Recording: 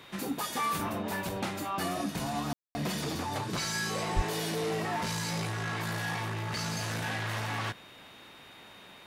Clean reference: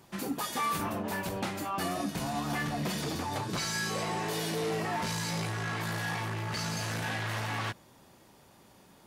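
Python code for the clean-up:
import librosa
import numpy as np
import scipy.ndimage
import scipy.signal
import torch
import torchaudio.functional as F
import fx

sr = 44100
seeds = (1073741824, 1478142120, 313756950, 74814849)

y = fx.notch(x, sr, hz=3700.0, q=30.0)
y = fx.highpass(y, sr, hz=140.0, slope=24, at=(4.15, 4.27), fade=0.02)
y = fx.fix_ambience(y, sr, seeds[0], print_start_s=8.08, print_end_s=8.58, start_s=2.53, end_s=2.75)
y = fx.noise_reduce(y, sr, print_start_s=8.08, print_end_s=8.58, reduce_db=6.0)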